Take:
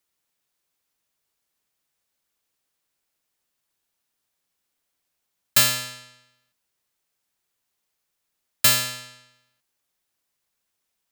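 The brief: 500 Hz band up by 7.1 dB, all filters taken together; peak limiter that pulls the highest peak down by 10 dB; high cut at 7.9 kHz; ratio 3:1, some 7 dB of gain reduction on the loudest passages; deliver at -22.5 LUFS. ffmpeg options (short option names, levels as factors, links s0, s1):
-af "lowpass=7900,equalizer=f=500:t=o:g=9,acompressor=threshold=0.0631:ratio=3,volume=2.82,alimiter=limit=0.266:level=0:latency=1"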